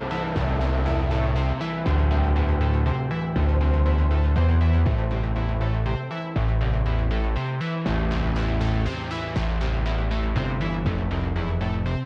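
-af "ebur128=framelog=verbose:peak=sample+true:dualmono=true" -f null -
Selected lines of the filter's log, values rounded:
Integrated loudness:
  I:         -21.0 LUFS
  Threshold: -31.0 LUFS
Loudness range:
  LRA:         3.5 LU
  Threshold: -40.9 LUFS
  LRA low:   -22.5 LUFS
  LRA high:  -19.1 LUFS
Sample peak:
  Peak:      -10.9 dBFS
True peak:
  Peak:      -10.9 dBFS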